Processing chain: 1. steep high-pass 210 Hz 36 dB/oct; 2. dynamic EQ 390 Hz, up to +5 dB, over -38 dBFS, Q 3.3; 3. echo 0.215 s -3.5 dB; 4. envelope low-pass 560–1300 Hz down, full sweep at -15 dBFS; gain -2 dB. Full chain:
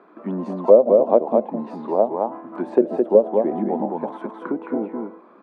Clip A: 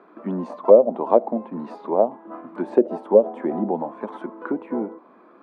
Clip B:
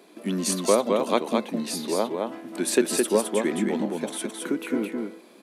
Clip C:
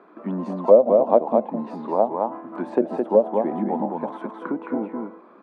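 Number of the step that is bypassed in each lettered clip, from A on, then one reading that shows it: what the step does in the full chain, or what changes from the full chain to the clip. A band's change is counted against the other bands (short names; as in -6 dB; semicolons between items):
3, crest factor change +1.5 dB; 4, 500 Hz band -6.5 dB; 2, loudness change -2.0 LU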